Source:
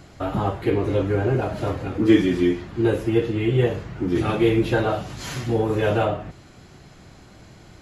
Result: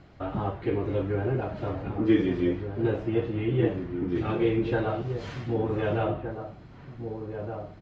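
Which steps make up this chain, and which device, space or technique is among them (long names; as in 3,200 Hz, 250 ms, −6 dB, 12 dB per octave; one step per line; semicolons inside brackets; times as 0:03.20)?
shout across a valley (high-frequency loss of the air 200 metres; slap from a distant wall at 260 metres, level −7 dB)
level −6 dB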